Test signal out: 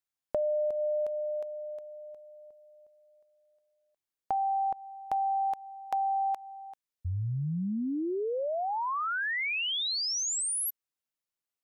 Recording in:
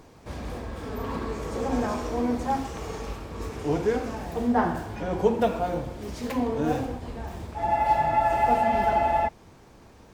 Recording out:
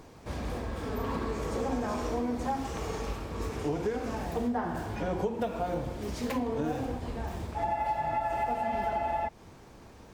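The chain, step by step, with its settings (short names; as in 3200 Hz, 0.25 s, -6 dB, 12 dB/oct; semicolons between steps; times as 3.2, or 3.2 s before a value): compressor 10:1, threshold -27 dBFS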